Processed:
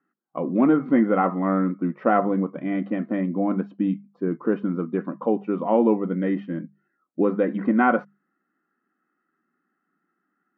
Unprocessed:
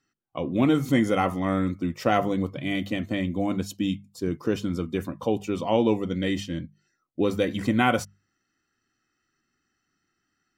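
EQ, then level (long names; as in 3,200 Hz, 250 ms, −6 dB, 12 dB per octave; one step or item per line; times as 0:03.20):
linear-phase brick-wall high-pass 160 Hz
transistor ladder low-pass 1,800 Hz, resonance 35%
spectral tilt −1.5 dB per octave
+8.0 dB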